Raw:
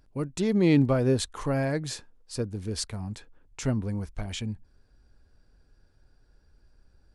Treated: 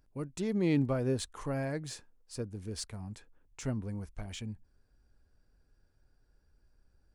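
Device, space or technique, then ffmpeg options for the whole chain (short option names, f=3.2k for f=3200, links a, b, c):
exciter from parts: -filter_complex "[0:a]asplit=2[a][b];[b]highpass=f=3.6k:w=0.5412,highpass=f=3.6k:w=1.3066,asoftclip=type=tanh:threshold=-38.5dB,volume=-8.5dB[c];[a][c]amix=inputs=2:normalize=0,volume=-7.5dB"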